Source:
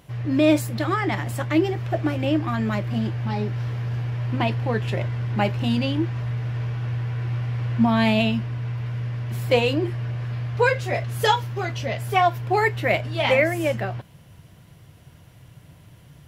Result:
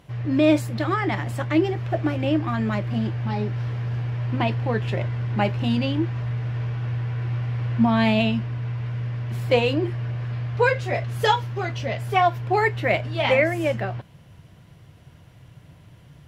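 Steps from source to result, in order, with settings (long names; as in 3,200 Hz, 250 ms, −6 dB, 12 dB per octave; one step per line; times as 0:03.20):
high-shelf EQ 8,000 Hz −10.5 dB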